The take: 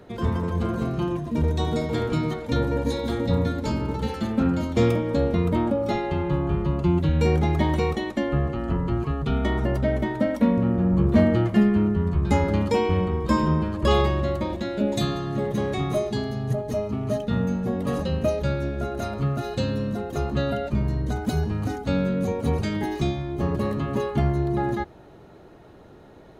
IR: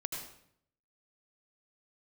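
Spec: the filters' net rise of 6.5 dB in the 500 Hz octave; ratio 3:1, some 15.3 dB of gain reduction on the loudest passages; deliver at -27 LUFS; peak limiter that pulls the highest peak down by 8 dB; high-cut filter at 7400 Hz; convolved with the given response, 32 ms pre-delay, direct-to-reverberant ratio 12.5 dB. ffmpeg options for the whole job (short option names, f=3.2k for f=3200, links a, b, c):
-filter_complex "[0:a]lowpass=7.4k,equalizer=f=500:t=o:g=8,acompressor=threshold=-33dB:ratio=3,alimiter=level_in=3dB:limit=-24dB:level=0:latency=1,volume=-3dB,asplit=2[a][b];[1:a]atrim=start_sample=2205,adelay=32[c];[b][c]afir=irnorm=-1:irlink=0,volume=-13.5dB[d];[a][d]amix=inputs=2:normalize=0,volume=8dB"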